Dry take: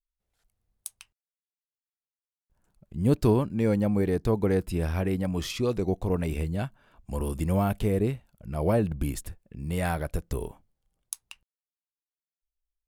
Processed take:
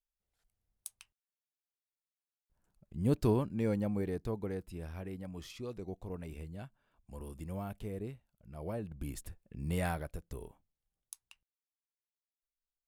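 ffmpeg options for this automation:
ffmpeg -i in.wav -af "volume=5dB,afade=type=out:start_time=3.51:duration=1.12:silence=0.375837,afade=type=in:start_time=8.9:duration=0.78:silence=0.251189,afade=type=out:start_time=9.68:duration=0.46:silence=0.334965" out.wav

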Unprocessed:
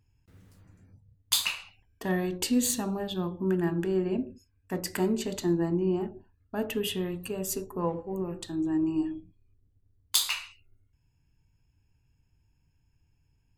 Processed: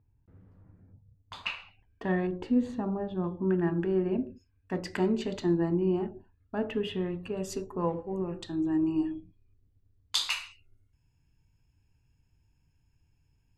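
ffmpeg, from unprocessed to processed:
ffmpeg -i in.wav -af "asetnsamples=nb_out_samples=441:pad=0,asendcmd='1.46 lowpass f 2600;2.27 lowpass f 1200;3.24 lowpass f 2300;4.27 lowpass f 3800;6.58 lowpass f 2300;7.37 lowpass f 4900;10.3 lowpass f 12000',lowpass=1100" out.wav

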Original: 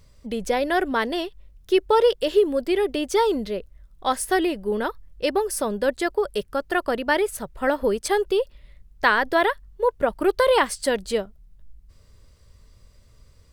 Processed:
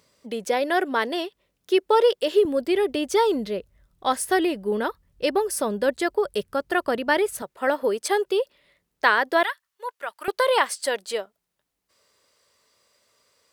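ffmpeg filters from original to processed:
ffmpeg -i in.wav -af "asetnsamples=nb_out_samples=441:pad=0,asendcmd='2.45 highpass f 88;7.42 highpass f 310;9.43 highpass f 1300;10.28 highpass f 520',highpass=270" out.wav

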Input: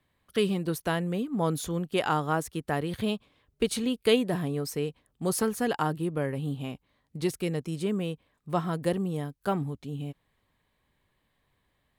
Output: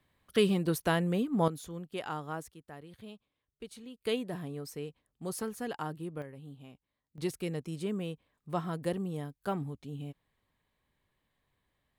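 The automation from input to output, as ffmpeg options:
ffmpeg -i in.wav -af "asetnsamples=nb_out_samples=441:pad=0,asendcmd='1.48 volume volume -11dB;2.54 volume volume -19dB;4.01 volume volume -9.5dB;6.22 volume volume -16dB;7.18 volume volume -5.5dB',volume=0dB" out.wav

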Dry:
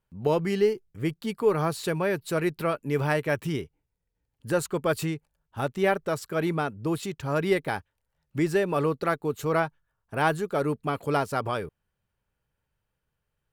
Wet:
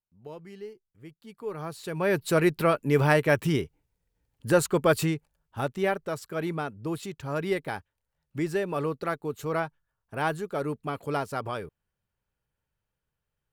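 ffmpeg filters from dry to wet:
ffmpeg -i in.wav -af "volume=4dB,afade=type=in:start_time=1.2:duration=0.71:silence=0.266073,afade=type=in:start_time=1.91:duration=0.27:silence=0.281838,afade=type=out:start_time=4.81:duration=1.17:silence=0.398107" out.wav

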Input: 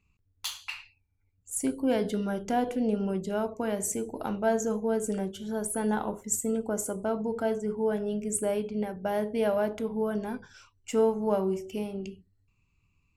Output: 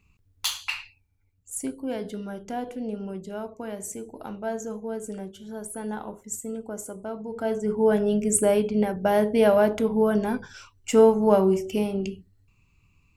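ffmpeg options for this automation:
ffmpeg -i in.wav -af "volume=20dB,afade=type=out:start_time=0.73:duration=1.03:silence=0.251189,afade=type=in:start_time=7.28:duration=0.64:silence=0.237137" out.wav

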